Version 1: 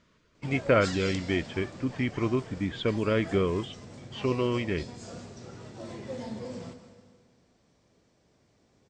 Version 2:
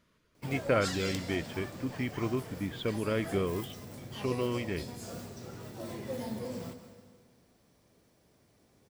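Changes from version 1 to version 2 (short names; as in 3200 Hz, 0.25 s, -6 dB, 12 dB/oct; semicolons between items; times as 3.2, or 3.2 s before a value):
speech -5.0 dB; master: remove steep low-pass 7900 Hz 48 dB/oct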